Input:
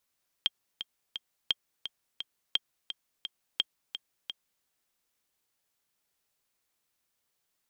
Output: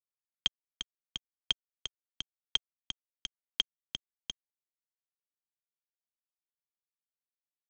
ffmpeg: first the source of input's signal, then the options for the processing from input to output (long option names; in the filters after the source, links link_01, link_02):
-f lavfi -i "aevalsrc='pow(10,(-12-10.5*gte(mod(t,3*60/172),60/172))/20)*sin(2*PI*3210*mod(t,60/172))*exp(-6.91*mod(t,60/172)/0.03)':duration=4.18:sample_rate=44100"
-af "bandreject=frequency=50:width_type=h:width=6,bandreject=frequency=100:width_type=h:width=6,bandreject=frequency=150:width_type=h:width=6,bandreject=frequency=200:width_type=h:width=6,bandreject=frequency=250:width_type=h:width=6,aresample=16000,acrusher=bits=6:dc=4:mix=0:aa=0.000001,aresample=44100"